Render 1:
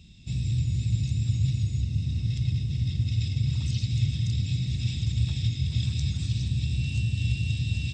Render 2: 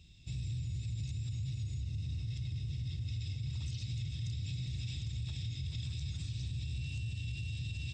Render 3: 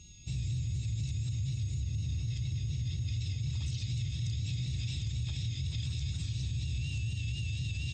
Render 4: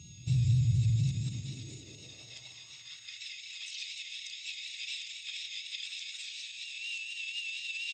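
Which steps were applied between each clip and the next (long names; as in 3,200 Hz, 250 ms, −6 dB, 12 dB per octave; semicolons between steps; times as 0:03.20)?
parametric band 210 Hz −9.5 dB 0.68 octaves; brickwall limiter −25.5 dBFS, peak gain reduction 10 dB; level −6 dB
pitch vibrato 4.1 Hz 50 cents; steady tone 6,600 Hz −60 dBFS; level +4 dB
high-pass filter sweep 120 Hz → 2,300 Hz, 0:00.89–0:03.39; single-tap delay 176 ms −12 dB; level +2 dB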